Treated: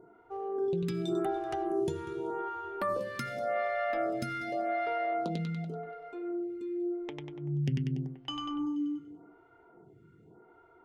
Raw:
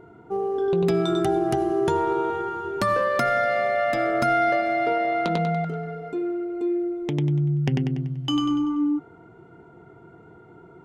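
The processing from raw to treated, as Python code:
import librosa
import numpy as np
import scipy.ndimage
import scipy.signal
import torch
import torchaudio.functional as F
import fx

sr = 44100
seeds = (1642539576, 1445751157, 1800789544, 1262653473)

y = fx.echo_feedback(x, sr, ms=192, feedback_pct=33, wet_db=-18)
y = fx.stagger_phaser(y, sr, hz=0.87)
y = y * 10.0 ** (-7.0 / 20.0)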